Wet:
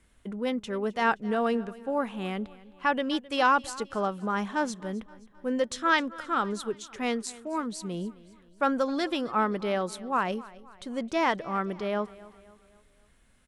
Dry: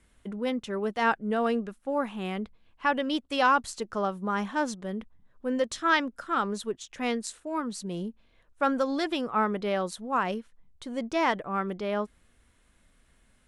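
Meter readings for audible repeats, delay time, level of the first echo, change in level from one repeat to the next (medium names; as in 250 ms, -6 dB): 3, 262 ms, -20.0 dB, -6.5 dB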